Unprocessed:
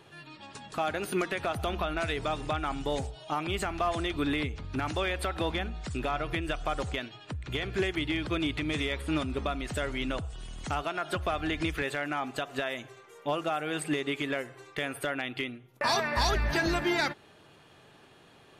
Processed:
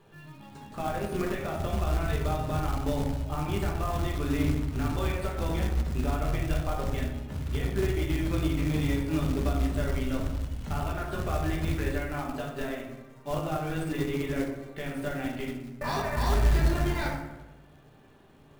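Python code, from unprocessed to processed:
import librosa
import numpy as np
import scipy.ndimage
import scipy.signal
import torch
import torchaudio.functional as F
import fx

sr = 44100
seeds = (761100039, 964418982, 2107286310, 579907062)

p1 = fx.low_shelf(x, sr, hz=140.0, db=8.0)
p2 = fx.room_shoebox(p1, sr, seeds[0], volume_m3=140.0, walls='mixed', distance_m=1.2)
p3 = fx.schmitt(p2, sr, flips_db=-18.0)
p4 = p2 + (p3 * librosa.db_to_amplitude(-7.0))
p5 = fx.high_shelf(p4, sr, hz=2300.0, db=-10.0)
p6 = fx.quant_float(p5, sr, bits=2)
p7 = p6 + fx.echo_wet_lowpass(p6, sr, ms=93, feedback_pct=55, hz=1700.0, wet_db=-9, dry=0)
y = p7 * librosa.db_to_amplitude(-6.0)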